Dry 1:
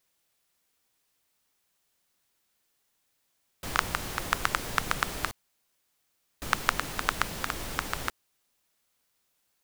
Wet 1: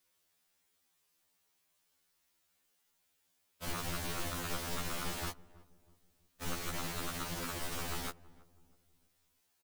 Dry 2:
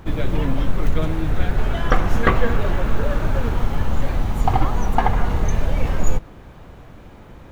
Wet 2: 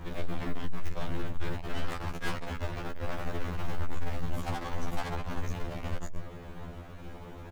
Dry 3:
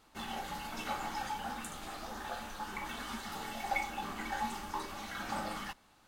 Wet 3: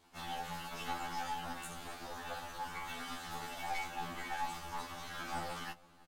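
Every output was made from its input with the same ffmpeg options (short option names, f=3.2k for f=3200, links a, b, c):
-filter_complex "[0:a]aeval=exprs='(tanh(35.5*val(0)+0.5)-tanh(0.5))/35.5':c=same,asplit=2[a][b];[b]adelay=324,lowpass=f=820:p=1,volume=-19dB,asplit=2[c][d];[d]adelay=324,lowpass=f=820:p=1,volume=0.45,asplit=2[e][f];[f]adelay=324,lowpass=f=820:p=1,volume=0.45,asplit=2[g][h];[h]adelay=324,lowpass=f=820:p=1,volume=0.45[i];[a][c][e][g][i]amix=inputs=5:normalize=0,afftfilt=real='re*2*eq(mod(b,4),0)':imag='im*2*eq(mod(b,4),0)':win_size=2048:overlap=0.75,volume=2.5dB"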